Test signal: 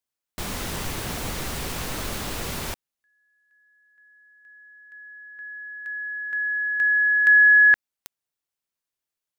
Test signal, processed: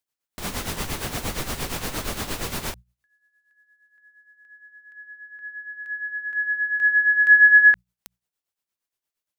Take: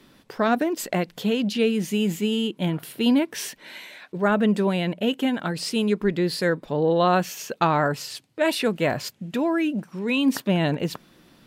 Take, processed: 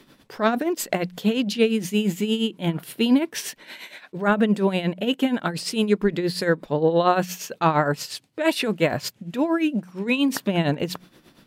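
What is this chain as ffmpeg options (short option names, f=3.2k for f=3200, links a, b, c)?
-af "bandreject=f=60:t=h:w=6,bandreject=f=120:t=h:w=6,bandreject=f=180:t=h:w=6,tremolo=f=8.6:d=0.69,volume=4dB"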